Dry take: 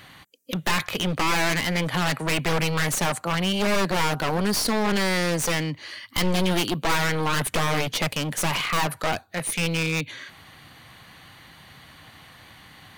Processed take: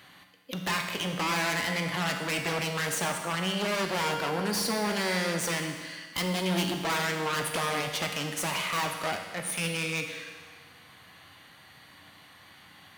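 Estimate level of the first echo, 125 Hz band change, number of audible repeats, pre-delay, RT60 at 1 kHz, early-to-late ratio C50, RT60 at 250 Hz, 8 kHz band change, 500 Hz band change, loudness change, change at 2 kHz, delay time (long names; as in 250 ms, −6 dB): no echo audible, −8.0 dB, no echo audible, 11 ms, 1.6 s, 5.0 dB, 1.6 s, −4.5 dB, −5.0 dB, −5.0 dB, −4.5 dB, no echo audible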